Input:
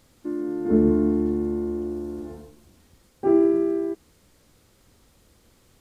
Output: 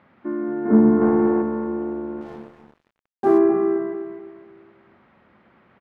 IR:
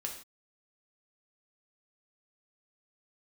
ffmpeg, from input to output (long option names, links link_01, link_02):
-filter_complex "[0:a]acontrast=50,highpass=180,equalizer=frequency=210:width_type=q:width=4:gain=4,equalizer=frequency=300:width_type=q:width=4:gain=-7,equalizer=frequency=480:width_type=q:width=4:gain=-8,lowpass=frequency=2100:width=0.5412,lowpass=frequency=2100:width=1.3066,asplit=3[link_01][link_02][link_03];[link_01]afade=type=out:start_time=1:duration=0.02[link_04];[link_02]asplit=2[link_05][link_06];[link_06]highpass=frequency=720:poles=1,volume=16dB,asoftclip=type=tanh:threshold=-7dB[link_07];[link_05][link_07]amix=inputs=2:normalize=0,lowpass=frequency=1600:poles=1,volume=-6dB,afade=type=in:start_time=1:duration=0.02,afade=type=out:start_time=1.41:duration=0.02[link_08];[link_03]afade=type=in:start_time=1.41:duration=0.02[link_09];[link_04][link_08][link_09]amix=inputs=3:normalize=0,lowshelf=frequency=390:gain=-4.5,aecho=1:1:255|510|765|1020:0.376|0.132|0.046|0.0161,asettb=1/sr,asplit=3[link_10][link_11][link_12];[link_10]atrim=end=2.214[link_13];[link_11]atrim=start=2.21:end=3.38,asetpts=PTS-STARTPTS,afade=type=in:duration=0.004:curve=qsin,afade=type=out:start_time=1.166:duration=0.004:curve=qsin,aeval=exprs='sgn(val(0))*max(abs(val(0))-0.00355,0)':channel_layout=same[link_14];[link_12]atrim=start=3.376[link_15];[link_13][link_14]acrossfade=duration=0.004:curve1=hsin:curve2=qsin[link_16];[link_16][link_15]acrossfade=duration=0.004:curve1=qsin:curve2=hsin,volume=4dB"